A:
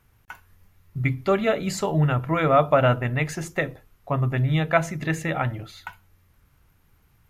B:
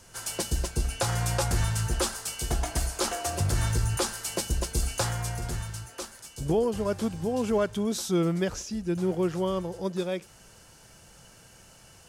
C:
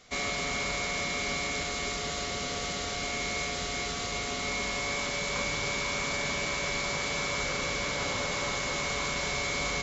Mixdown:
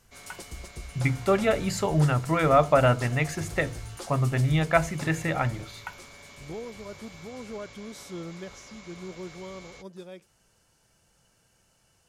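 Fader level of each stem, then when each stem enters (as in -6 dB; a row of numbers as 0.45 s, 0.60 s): -1.5 dB, -13.0 dB, -18.0 dB; 0.00 s, 0.00 s, 0.00 s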